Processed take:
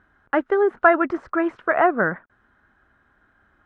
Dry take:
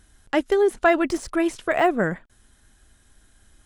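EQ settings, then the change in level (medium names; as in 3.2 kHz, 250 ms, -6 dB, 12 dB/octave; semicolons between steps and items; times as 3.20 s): high-pass 180 Hz 6 dB/octave; resonant low-pass 1.4 kHz, resonance Q 2.6; 0.0 dB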